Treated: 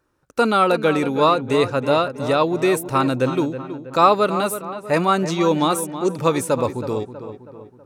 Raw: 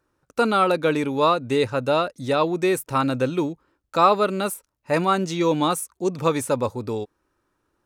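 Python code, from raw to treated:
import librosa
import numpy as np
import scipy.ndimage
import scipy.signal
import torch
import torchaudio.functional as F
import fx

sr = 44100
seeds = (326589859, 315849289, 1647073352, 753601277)

y = fx.echo_filtered(x, sr, ms=322, feedback_pct=50, hz=2500.0, wet_db=-11.0)
y = F.gain(torch.from_numpy(y), 2.5).numpy()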